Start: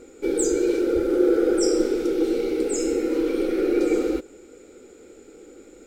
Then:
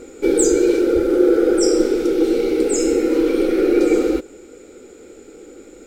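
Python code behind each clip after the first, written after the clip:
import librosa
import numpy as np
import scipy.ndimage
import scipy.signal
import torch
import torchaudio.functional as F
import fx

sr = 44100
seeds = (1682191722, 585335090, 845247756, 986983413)

y = fx.rider(x, sr, range_db=10, speed_s=2.0)
y = y * 10.0 ** (5.5 / 20.0)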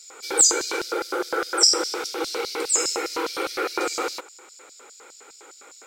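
y = fx.filter_lfo_highpass(x, sr, shape='square', hz=4.9, low_hz=990.0, high_hz=4900.0, q=3.9)
y = y * 10.0 ** (2.0 / 20.0)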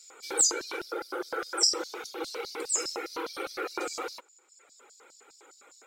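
y = fx.dereverb_blind(x, sr, rt60_s=1.4)
y = y * 10.0 ** (-7.0 / 20.0)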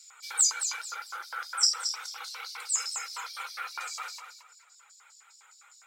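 y = scipy.signal.sosfilt(scipy.signal.butter(4, 980.0, 'highpass', fs=sr, output='sos'), x)
y = fx.echo_feedback(y, sr, ms=223, feedback_pct=27, wet_db=-8.5)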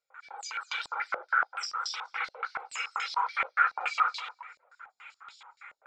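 y = fx.rider(x, sr, range_db=5, speed_s=0.5)
y = fx.filter_held_lowpass(y, sr, hz=7.0, low_hz=580.0, high_hz=3400.0)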